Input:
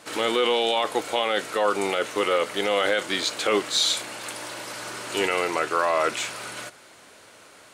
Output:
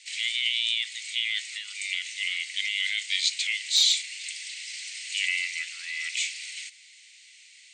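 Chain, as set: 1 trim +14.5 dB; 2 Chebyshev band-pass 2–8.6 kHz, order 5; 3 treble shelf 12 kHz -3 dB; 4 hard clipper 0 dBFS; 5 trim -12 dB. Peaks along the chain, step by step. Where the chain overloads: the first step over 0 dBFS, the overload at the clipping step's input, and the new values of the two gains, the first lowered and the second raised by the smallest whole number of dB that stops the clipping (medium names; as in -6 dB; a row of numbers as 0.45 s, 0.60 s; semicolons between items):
+4.5 dBFS, +4.5 dBFS, +4.0 dBFS, 0.0 dBFS, -12.0 dBFS; step 1, 4.0 dB; step 1 +10.5 dB, step 5 -8 dB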